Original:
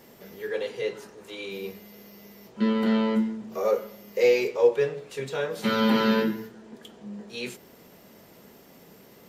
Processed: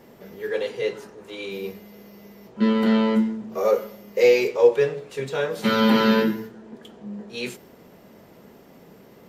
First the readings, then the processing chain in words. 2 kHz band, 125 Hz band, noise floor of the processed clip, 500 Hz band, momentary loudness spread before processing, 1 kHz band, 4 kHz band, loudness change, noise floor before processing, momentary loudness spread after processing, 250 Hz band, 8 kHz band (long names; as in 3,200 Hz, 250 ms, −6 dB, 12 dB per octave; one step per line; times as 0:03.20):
+4.0 dB, +4.0 dB, −50 dBFS, +4.0 dB, 18 LU, +4.0 dB, +3.5 dB, +4.0 dB, −53 dBFS, 18 LU, +4.0 dB, can't be measured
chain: one half of a high-frequency compander decoder only
level +4 dB